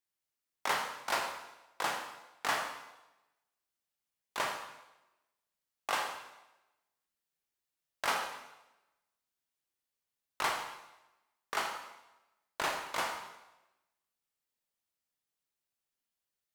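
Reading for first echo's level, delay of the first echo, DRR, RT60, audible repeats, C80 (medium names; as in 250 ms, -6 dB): no echo, no echo, 2.0 dB, 1.0 s, no echo, 7.5 dB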